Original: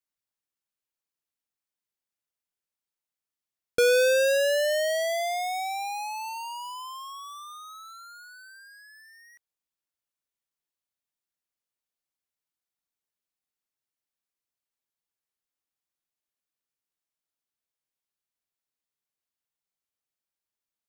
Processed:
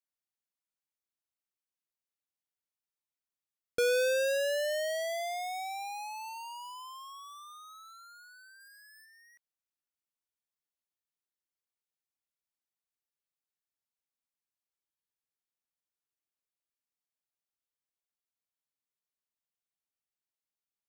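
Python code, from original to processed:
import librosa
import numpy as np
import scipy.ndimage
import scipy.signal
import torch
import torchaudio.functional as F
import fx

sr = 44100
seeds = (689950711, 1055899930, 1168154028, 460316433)

y = fx.high_shelf(x, sr, hz=fx.line((8.59, 8900.0), (9.04, 6100.0)), db=10.0, at=(8.59, 9.04), fade=0.02)
y = y * 10.0 ** (-7.0 / 20.0)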